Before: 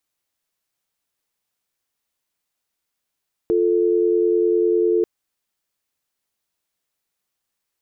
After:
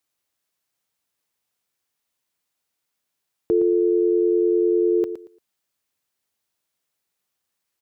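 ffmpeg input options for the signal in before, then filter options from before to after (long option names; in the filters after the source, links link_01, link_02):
-f lavfi -i "aevalsrc='0.133*(sin(2*PI*350*t)+sin(2*PI*440*t))':duration=1.54:sample_rate=44100"
-filter_complex "[0:a]highpass=57,asplit=2[link_01][link_02];[link_02]aecho=0:1:115|230|345:0.282|0.062|0.0136[link_03];[link_01][link_03]amix=inputs=2:normalize=0"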